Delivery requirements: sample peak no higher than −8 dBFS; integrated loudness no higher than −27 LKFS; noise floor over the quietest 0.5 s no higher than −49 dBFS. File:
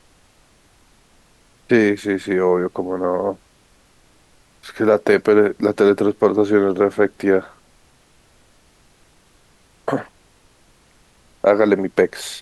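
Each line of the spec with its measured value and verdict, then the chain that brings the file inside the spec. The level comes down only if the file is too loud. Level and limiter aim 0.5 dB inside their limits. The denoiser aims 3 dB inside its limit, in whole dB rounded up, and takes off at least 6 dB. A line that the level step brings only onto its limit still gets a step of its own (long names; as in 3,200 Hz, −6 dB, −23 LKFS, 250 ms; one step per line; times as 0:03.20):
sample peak −3.0 dBFS: out of spec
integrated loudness −18.0 LKFS: out of spec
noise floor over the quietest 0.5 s −55 dBFS: in spec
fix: level −9.5 dB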